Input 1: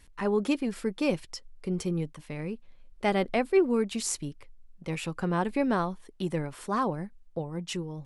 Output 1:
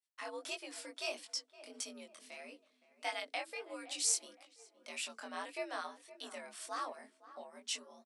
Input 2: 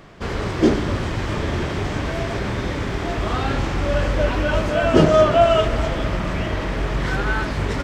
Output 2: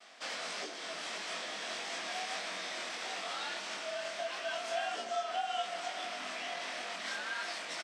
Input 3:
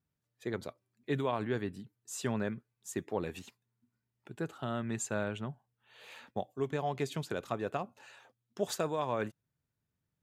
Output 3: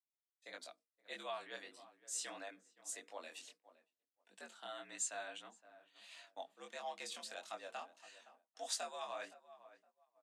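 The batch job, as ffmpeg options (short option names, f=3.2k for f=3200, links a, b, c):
-filter_complex "[0:a]asplit=2[a][b];[b]adelay=515,lowpass=f=1.5k:p=1,volume=-15.5dB,asplit=2[c][d];[d]adelay=515,lowpass=f=1.5k:p=1,volume=0.37,asplit=2[e][f];[f]adelay=515,lowpass=f=1.5k:p=1,volume=0.37[g];[a][c][e][g]amix=inputs=4:normalize=0,acompressor=threshold=-22dB:ratio=12,highpass=f=120:w=0.5412,highpass=f=120:w=1.3066,equalizer=f=340:t=q:w=4:g=-5,equalizer=f=600:t=q:w=4:g=8,equalizer=f=6.9k:t=q:w=4:g=-5,lowpass=f=8.6k:w=0.5412,lowpass=f=8.6k:w=1.3066,bandreject=f=50:t=h:w=6,bandreject=f=100:t=h:w=6,bandreject=f=150:t=h:w=6,bandreject=f=200:t=h:w=6,bandreject=f=250:t=h:w=6,bandreject=f=300:t=h:w=6,bandreject=f=350:t=h:w=6,bandreject=f=400:t=h:w=6,afreqshift=72,flanger=delay=20:depth=4.5:speed=1.6,agate=range=-33dB:threshold=-52dB:ratio=3:detection=peak,aderivative,volume=7.5dB"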